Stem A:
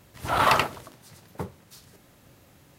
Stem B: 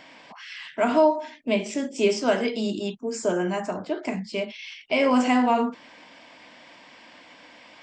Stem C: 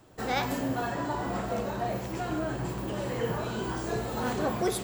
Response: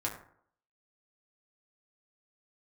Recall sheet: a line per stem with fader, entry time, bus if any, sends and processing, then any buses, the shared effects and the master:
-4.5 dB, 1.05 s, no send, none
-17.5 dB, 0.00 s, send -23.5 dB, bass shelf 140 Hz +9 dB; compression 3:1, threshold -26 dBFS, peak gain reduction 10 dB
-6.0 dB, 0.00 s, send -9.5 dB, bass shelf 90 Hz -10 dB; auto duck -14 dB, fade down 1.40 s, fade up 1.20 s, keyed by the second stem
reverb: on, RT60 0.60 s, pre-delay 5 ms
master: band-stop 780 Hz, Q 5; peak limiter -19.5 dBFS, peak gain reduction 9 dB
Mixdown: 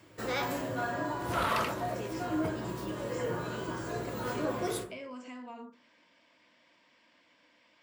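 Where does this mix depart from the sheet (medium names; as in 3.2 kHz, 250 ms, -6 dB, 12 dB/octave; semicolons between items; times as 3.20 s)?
stem B: missing bass shelf 140 Hz +9 dB; reverb return +8.0 dB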